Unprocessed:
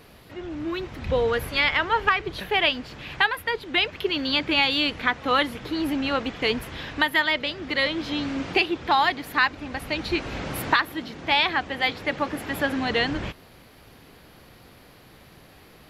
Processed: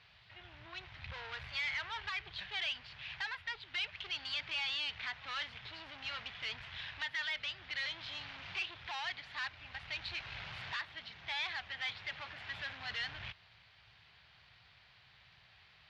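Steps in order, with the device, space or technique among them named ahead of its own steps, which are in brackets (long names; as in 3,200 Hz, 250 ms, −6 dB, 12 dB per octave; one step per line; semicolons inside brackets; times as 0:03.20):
scooped metal amplifier (tube saturation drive 29 dB, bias 0.6; loudspeaker in its box 79–4,100 Hz, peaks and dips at 110 Hz +4 dB, 240 Hz −4 dB, 500 Hz −8 dB, 1,200 Hz −3 dB; guitar amp tone stack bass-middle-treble 10-0-10)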